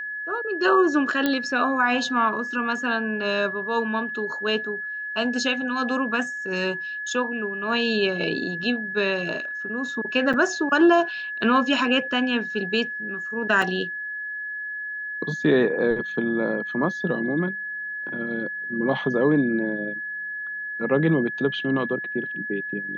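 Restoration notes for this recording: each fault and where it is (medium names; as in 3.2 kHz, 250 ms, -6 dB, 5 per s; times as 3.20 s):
whine 1.7 kHz -29 dBFS
1.26 s: pop -9 dBFS
10.33–10.34 s: dropout 6.6 ms
13.62 s: dropout 3.2 ms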